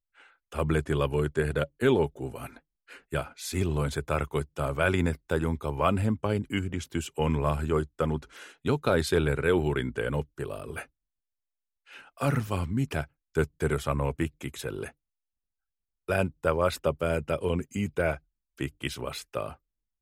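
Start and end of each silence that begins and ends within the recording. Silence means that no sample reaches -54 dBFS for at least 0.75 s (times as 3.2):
10.86–11.87
14.92–16.08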